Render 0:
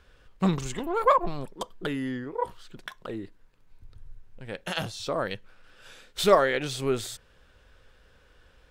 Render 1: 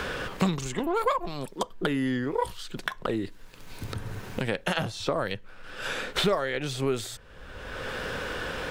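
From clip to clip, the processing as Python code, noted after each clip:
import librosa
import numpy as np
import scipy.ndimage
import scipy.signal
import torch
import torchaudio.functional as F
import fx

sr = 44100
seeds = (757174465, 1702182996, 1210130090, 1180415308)

y = fx.band_squash(x, sr, depth_pct=100)
y = F.gain(torch.from_numpy(y), 1.5).numpy()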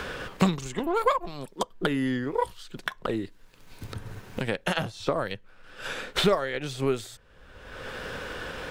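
y = fx.upward_expand(x, sr, threshold_db=-41.0, expansion=1.5)
y = F.gain(torch.from_numpy(y), 3.5).numpy()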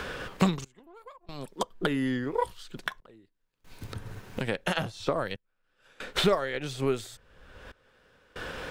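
y = fx.step_gate(x, sr, bpm=70, pattern='xxx...xxxxx', floor_db=-24.0, edge_ms=4.5)
y = F.gain(torch.from_numpy(y), -1.5).numpy()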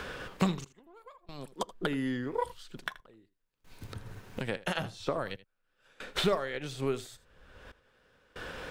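y = x + 10.0 ** (-18.0 / 20.0) * np.pad(x, (int(80 * sr / 1000.0), 0))[:len(x)]
y = F.gain(torch.from_numpy(y), -4.0).numpy()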